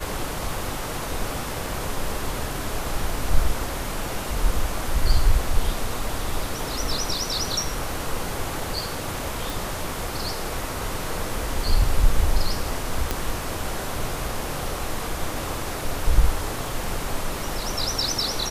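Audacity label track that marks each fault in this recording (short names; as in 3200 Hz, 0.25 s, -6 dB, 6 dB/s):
9.500000	9.500000	pop
13.110000	13.110000	pop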